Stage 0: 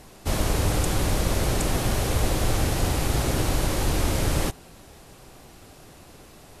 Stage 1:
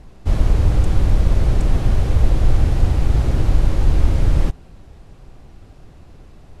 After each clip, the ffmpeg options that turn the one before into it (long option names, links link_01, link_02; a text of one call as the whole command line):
ffmpeg -i in.wav -af "aemphasis=mode=reproduction:type=bsi,volume=-3dB" out.wav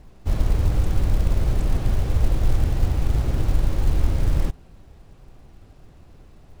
ffmpeg -i in.wav -af "acrusher=bits=8:mode=log:mix=0:aa=0.000001,volume=-5dB" out.wav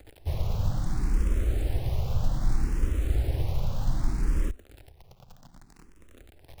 ffmpeg -i in.wav -filter_complex "[0:a]acrusher=bits=8:dc=4:mix=0:aa=0.000001,asplit=2[link_01][link_02];[link_02]afreqshift=0.64[link_03];[link_01][link_03]amix=inputs=2:normalize=1,volume=-3dB" out.wav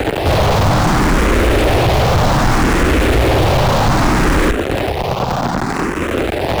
ffmpeg -i in.wav -filter_complex "[0:a]asplit=2[link_01][link_02];[link_02]highpass=frequency=720:poles=1,volume=52dB,asoftclip=type=tanh:threshold=-12.5dB[link_03];[link_01][link_03]amix=inputs=2:normalize=0,lowpass=frequency=1500:poles=1,volume=-6dB,volume=8dB" out.wav